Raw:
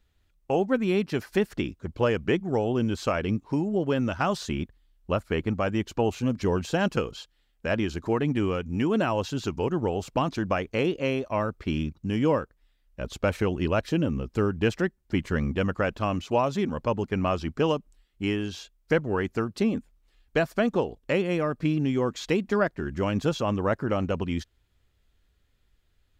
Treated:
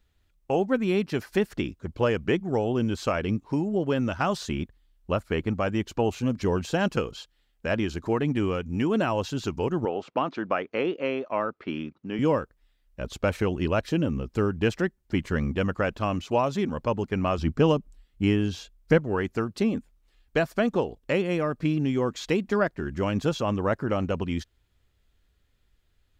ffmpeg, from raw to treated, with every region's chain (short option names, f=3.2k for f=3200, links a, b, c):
-filter_complex "[0:a]asettb=1/sr,asplit=3[a][b][c];[a]atrim=end=9.854[d];[b]atrim=start=9.85:end=12.19,asetpts=PTS-STARTPTS,afade=t=in:d=0.004:c=qsin,afade=t=out:st=2.336:d=0.004:c=qsin,highpass=260,lowpass=3k,equalizer=f=1.3k:w=7.9:g=4.5[e];[c]atrim=start=12.186[f];[d][e]acrossfade=d=0.004:c1=hsin:c2=qsin[g];[g][f]acrossfade=d=0.004:c1=qsin:c2=hsin,asettb=1/sr,asplit=3[h][i][j];[h]atrim=end=17.384[k];[i]atrim=start=17.38:end=18.98,asetpts=PTS-STARTPTS,afade=t=in:d=0.004:c=qsin,afade=t=out:st=1.596:d=0.004:c=qsin,lowshelf=f=350:g=8,bandreject=f=370:w=9.9[l];[j]atrim=start=18.976[m];[k][l]acrossfade=d=0.004:c1=hsin:c2=qsin[n];[n][m]acrossfade=d=0.004:c1=qsin:c2=hsin"